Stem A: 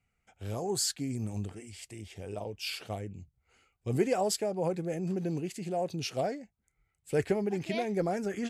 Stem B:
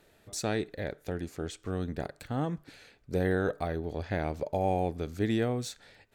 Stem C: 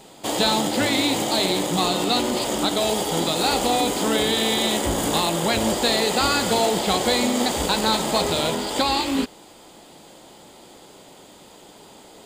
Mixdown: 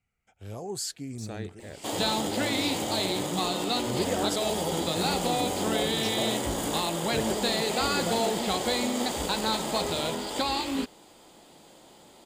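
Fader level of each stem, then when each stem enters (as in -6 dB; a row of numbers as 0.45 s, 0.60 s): -3.0 dB, -8.5 dB, -7.0 dB; 0.00 s, 0.85 s, 1.60 s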